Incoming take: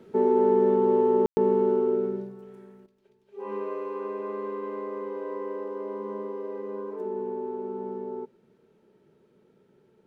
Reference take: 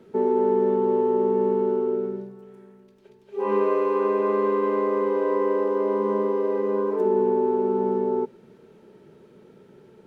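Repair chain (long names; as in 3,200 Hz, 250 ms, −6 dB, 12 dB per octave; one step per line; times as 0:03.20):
ambience match 0:01.26–0:01.37
level correction +11 dB, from 0:02.86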